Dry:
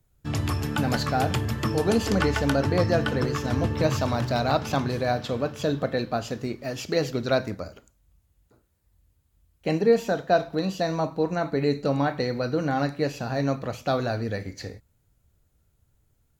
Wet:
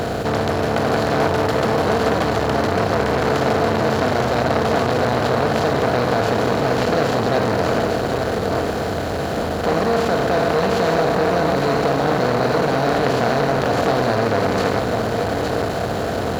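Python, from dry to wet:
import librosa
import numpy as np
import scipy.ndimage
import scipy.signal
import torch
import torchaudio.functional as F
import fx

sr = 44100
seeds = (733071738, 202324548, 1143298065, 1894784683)

p1 = fx.bin_compress(x, sr, power=0.2)
p2 = fx.high_shelf(p1, sr, hz=4300.0, db=-5.5)
p3 = fx.over_compress(p2, sr, threshold_db=-19.0, ratio=-1.0)
p4 = p2 + (p3 * 10.0 ** (-2.5 / 20.0))
p5 = fx.quant_dither(p4, sr, seeds[0], bits=8, dither='triangular')
p6 = p5 + fx.echo_single(p5, sr, ms=864, db=-5.0, dry=0)
p7 = fx.transformer_sat(p6, sr, knee_hz=1200.0)
y = p7 * 10.0 ** (-4.5 / 20.0)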